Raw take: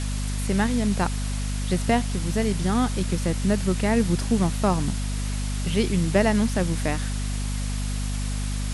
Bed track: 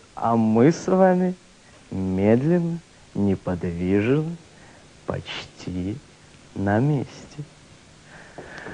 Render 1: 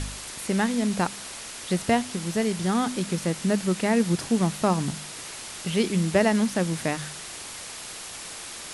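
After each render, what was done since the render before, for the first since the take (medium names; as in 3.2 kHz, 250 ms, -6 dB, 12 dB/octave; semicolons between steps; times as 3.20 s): de-hum 50 Hz, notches 5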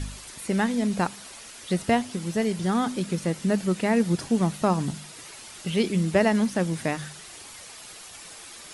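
noise reduction 8 dB, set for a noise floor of -39 dBFS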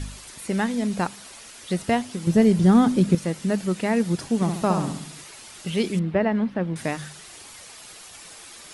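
2.27–3.15 s: bass shelf 480 Hz +12 dB; 4.35–5.24 s: flutter echo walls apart 11.4 m, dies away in 0.63 s; 5.99–6.76 s: distance through air 410 m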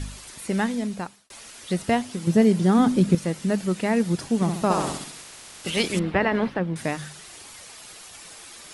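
0.66–1.30 s: fade out; 2.20–2.78 s: high-pass 87 Hz -> 240 Hz; 4.70–6.58 s: spectral peaks clipped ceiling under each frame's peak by 14 dB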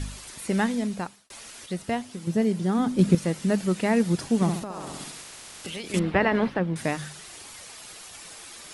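1.66–2.99 s: gain -6 dB; 4.59–5.94 s: compression, threshold -32 dBFS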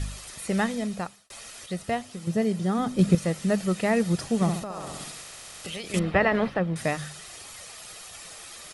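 peaking EQ 250 Hz -3 dB 0.26 oct; comb 1.6 ms, depth 31%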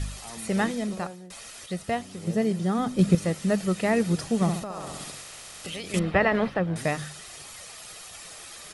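add bed track -23.5 dB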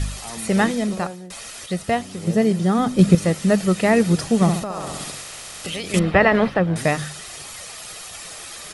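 trim +7 dB; peak limiter -2 dBFS, peak gain reduction 1 dB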